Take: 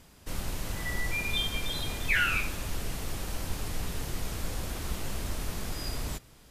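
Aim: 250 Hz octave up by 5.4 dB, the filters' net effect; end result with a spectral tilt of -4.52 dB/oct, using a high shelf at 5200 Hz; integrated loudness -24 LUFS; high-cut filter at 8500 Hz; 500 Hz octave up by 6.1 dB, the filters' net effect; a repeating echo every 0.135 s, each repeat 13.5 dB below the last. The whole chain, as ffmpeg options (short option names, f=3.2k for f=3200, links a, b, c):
-af "lowpass=8.5k,equalizer=f=250:t=o:g=5.5,equalizer=f=500:t=o:g=6,highshelf=f=5.2k:g=-5.5,aecho=1:1:135|270:0.211|0.0444,volume=9dB"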